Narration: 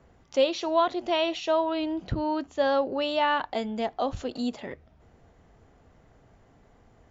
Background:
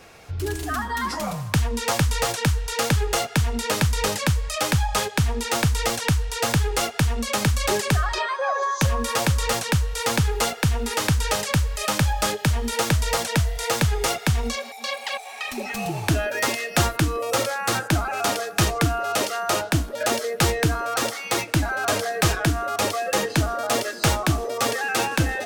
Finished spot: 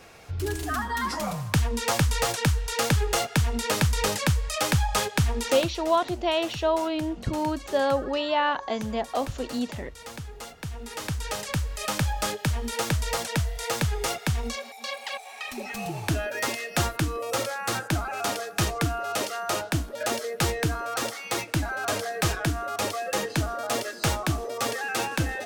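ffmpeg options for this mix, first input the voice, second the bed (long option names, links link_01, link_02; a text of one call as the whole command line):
ffmpeg -i stem1.wav -i stem2.wav -filter_complex "[0:a]adelay=5150,volume=0.5dB[link_01];[1:a]volume=10.5dB,afade=type=out:start_time=5.42:duration=0.29:silence=0.16788,afade=type=in:start_time=10.49:duration=1.4:silence=0.237137[link_02];[link_01][link_02]amix=inputs=2:normalize=0" out.wav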